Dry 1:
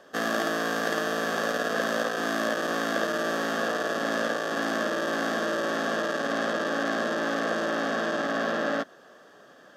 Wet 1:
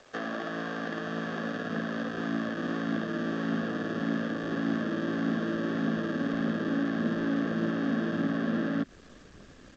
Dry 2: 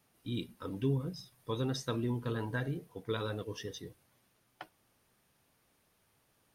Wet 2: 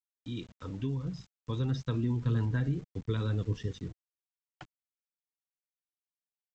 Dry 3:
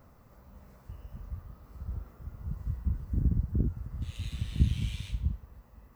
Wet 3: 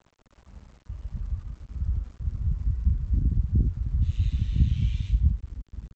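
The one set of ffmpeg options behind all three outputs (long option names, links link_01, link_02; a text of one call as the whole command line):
ffmpeg -i in.wav -filter_complex "[0:a]acrossover=split=4100[link_01][link_02];[link_02]acompressor=threshold=-54dB:ratio=4:attack=1:release=60[link_03];[link_01][link_03]amix=inputs=2:normalize=0,aresample=16000,aeval=exprs='val(0)*gte(abs(val(0)),0.00266)':channel_layout=same,aresample=44100,acrossover=split=400|910[link_04][link_05][link_06];[link_04]acompressor=threshold=-35dB:ratio=4[link_07];[link_05]acompressor=threshold=-40dB:ratio=4[link_08];[link_06]acompressor=threshold=-36dB:ratio=4[link_09];[link_07][link_08][link_09]amix=inputs=3:normalize=0,asubboost=boost=7.5:cutoff=240,aphaser=in_gain=1:out_gain=1:delay=4.2:decay=0.23:speed=1.7:type=triangular,volume=-1.5dB" out.wav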